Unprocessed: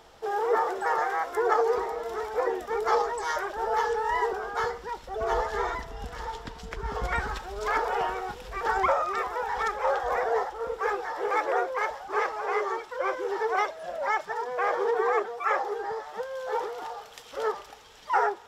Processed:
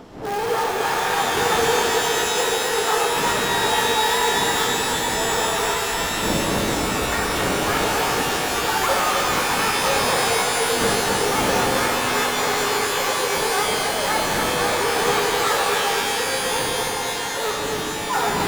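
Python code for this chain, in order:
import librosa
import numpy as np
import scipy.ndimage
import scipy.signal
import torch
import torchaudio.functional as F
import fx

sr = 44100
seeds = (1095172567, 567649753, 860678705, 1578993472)

p1 = fx.dmg_wind(x, sr, seeds[0], corner_hz=430.0, level_db=-34.0)
p2 = (np.mod(10.0 ** (23.5 / 20.0) * p1 + 1.0, 2.0) - 1.0) / 10.0 ** (23.5 / 20.0)
p3 = p1 + (p2 * librosa.db_to_amplitude(-5.5))
p4 = fx.low_shelf(p3, sr, hz=95.0, db=-9.5)
p5 = p4 + fx.echo_single(p4, sr, ms=261, db=-6.0, dry=0)
y = fx.rev_shimmer(p5, sr, seeds[1], rt60_s=3.7, semitones=12, shimmer_db=-2, drr_db=0.5)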